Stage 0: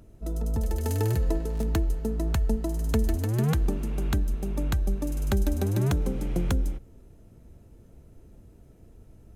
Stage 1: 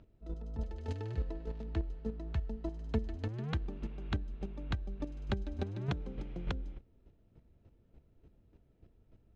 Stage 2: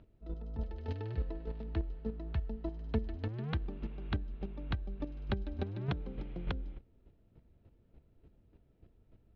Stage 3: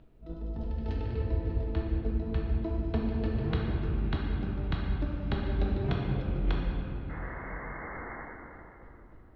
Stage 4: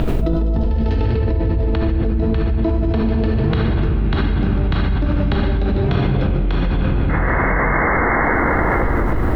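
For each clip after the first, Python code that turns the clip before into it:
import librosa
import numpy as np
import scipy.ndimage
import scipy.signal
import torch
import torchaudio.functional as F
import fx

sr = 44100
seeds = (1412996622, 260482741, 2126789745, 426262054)

y1 = fx.ladder_lowpass(x, sr, hz=4700.0, resonance_pct=25)
y1 = fx.chopper(y1, sr, hz=3.4, depth_pct=60, duty_pct=15)
y1 = y1 * 10.0 ** (-1.0 / 20.0)
y2 = scipy.signal.sosfilt(scipy.signal.butter(4, 4600.0, 'lowpass', fs=sr, output='sos'), y1)
y3 = fx.spec_paint(y2, sr, seeds[0], shape='noise', start_s=7.09, length_s=1.13, low_hz=200.0, high_hz=2200.0, level_db=-48.0)
y3 = fx.room_shoebox(y3, sr, seeds[1], volume_m3=190.0, walls='hard', distance_m=0.64)
y3 = y3 * 10.0 ** (1.5 / 20.0)
y4 = fx.env_flatten(y3, sr, amount_pct=100)
y4 = y4 * 10.0 ** (7.0 / 20.0)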